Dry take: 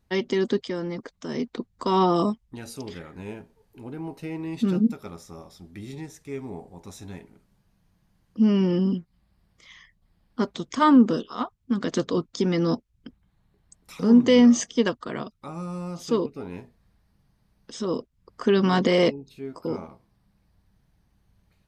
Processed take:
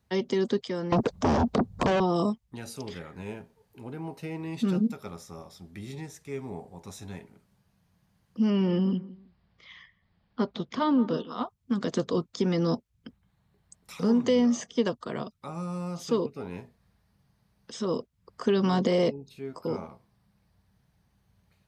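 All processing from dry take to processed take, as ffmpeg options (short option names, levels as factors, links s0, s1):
-filter_complex "[0:a]asettb=1/sr,asplit=3[s0][s1][s2];[s0]atrim=end=0.924[s3];[s1]atrim=start=0.92:end=2,asetpts=PTS-STARTPTS,afade=t=in:d=0.004:c=qsin,afade=t=out:st=1.076:d=0.004:c=qsin,tiltshelf=f=1400:g=9,acompressor=threshold=0.1:ratio=5:attack=3.2:release=140:knee=1:detection=peak,aeval=exprs='0.224*sin(PI/2*4.47*val(0)/0.224)':c=same[s4];[s2]atrim=start=1.996[s5];[s3][s4]acrossfade=d=0.004:c1=hsin:c2=qsin[s6];[s6][s5]acrossfade=d=0.004:c1=qsin:c2=hsin,asettb=1/sr,asplit=3[s7][s8][s9];[s7]atrim=end=8.504[s10];[s8]atrim=start=8.5:end=11.43,asetpts=PTS-STARTPTS,afade=t=in:d=0.004:c=qsin,afade=t=out:st=2.926:d=0.004:c=qsin,lowpass=f=4500:w=0.5412,lowpass=f=4500:w=1.3066,asplit=2[s11][s12];[s12]adelay=163,lowpass=f=1600:p=1,volume=0.119,asplit=2[s13][s14];[s14]adelay=163,lowpass=f=1600:p=1,volume=0.27[s15];[s11][s13][s15]amix=inputs=3:normalize=0,atrim=end_sample=129213[s16];[s9]atrim=start=11.426[s17];[s10][s16]acrossfade=d=0.004:c1=hsin:c2=qsin[s18];[s18][s17]acrossfade=d=0.004:c1=qsin:c2=hsin,highpass=68,equalizer=f=300:t=o:w=0.52:g=-5.5,acrossover=split=510|1100|3100[s19][s20][s21][s22];[s19]acompressor=threshold=0.0794:ratio=4[s23];[s20]acompressor=threshold=0.0316:ratio=4[s24];[s21]acompressor=threshold=0.00501:ratio=4[s25];[s22]acompressor=threshold=0.01:ratio=4[s26];[s23][s24][s25][s26]amix=inputs=4:normalize=0"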